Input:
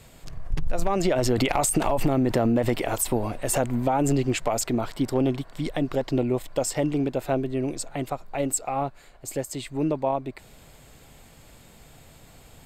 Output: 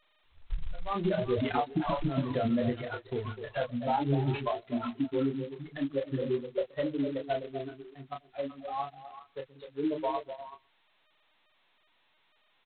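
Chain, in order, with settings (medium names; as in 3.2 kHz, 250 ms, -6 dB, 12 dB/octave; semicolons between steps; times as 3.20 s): expander on every frequency bin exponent 3; resonant high shelf 1.8 kHz -6.5 dB, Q 1.5; compression 3:1, threshold -30 dBFS, peak gain reduction 9 dB; doubling 29 ms -4.5 dB; on a send: repeats whose band climbs or falls 126 ms, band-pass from 190 Hz, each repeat 1.4 oct, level -4 dB; on the sum: trim +2 dB; G.726 16 kbps 8 kHz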